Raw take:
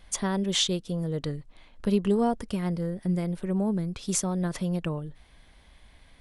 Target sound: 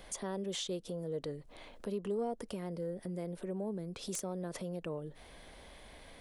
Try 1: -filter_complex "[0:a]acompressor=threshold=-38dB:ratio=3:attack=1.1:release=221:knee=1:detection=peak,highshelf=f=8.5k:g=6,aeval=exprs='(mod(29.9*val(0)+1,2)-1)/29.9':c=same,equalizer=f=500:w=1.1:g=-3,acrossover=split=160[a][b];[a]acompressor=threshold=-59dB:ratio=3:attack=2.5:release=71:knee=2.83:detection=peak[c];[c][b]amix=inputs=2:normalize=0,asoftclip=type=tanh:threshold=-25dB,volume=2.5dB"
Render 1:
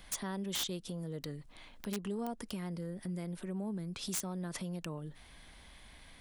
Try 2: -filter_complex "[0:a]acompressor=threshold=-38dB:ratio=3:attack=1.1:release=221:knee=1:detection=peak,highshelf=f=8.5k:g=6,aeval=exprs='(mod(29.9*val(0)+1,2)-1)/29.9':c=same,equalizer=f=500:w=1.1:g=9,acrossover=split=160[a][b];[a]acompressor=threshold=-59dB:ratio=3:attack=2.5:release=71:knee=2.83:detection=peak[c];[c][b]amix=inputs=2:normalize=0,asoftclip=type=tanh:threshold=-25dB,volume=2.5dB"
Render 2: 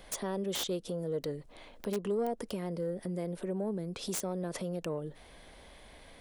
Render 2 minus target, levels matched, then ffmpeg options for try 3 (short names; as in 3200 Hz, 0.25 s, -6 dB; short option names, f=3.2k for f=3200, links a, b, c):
compressor: peak gain reduction -4.5 dB
-filter_complex "[0:a]acompressor=threshold=-44.5dB:ratio=3:attack=1.1:release=221:knee=1:detection=peak,highshelf=f=8.5k:g=6,aeval=exprs='(mod(29.9*val(0)+1,2)-1)/29.9':c=same,equalizer=f=500:w=1.1:g=9,acrossover=split=160[a][b];[a]acompressor=threshold=-59dB:ratio=3:attack=2.5:release=71:knee=2.83:detection=peak[c];[c][b]amix=inputs=2:normalize=0,asoftclip=type=tanh:threshold=-25dB,volume=2.5dB"